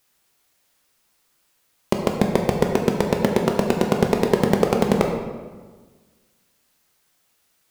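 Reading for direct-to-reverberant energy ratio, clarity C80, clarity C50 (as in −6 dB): 1.5 dB, 6.0 dB, 4.5 dB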